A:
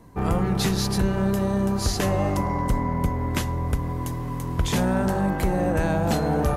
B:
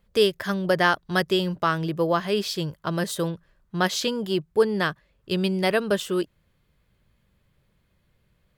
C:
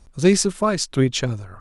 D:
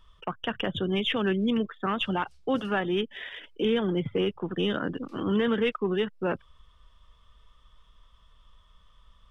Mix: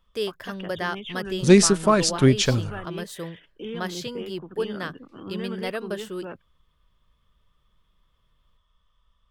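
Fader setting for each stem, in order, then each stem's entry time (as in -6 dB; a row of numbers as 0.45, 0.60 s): off, -8.5 dB, +1.5 dB, -9.5 dB; off, 0.00 s, 1.25 s, 0.00 s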